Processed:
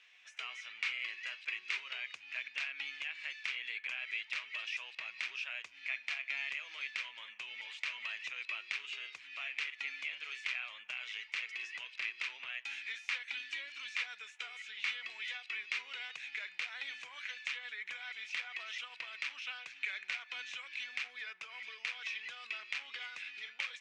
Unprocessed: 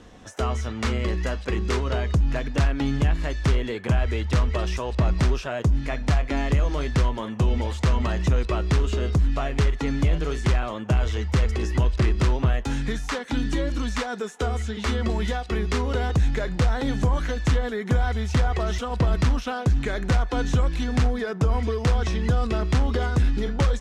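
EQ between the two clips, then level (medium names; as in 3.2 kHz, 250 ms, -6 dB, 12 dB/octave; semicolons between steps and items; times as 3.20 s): ladder band-pass 2.6 kHz, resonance 70%; +3.5 dB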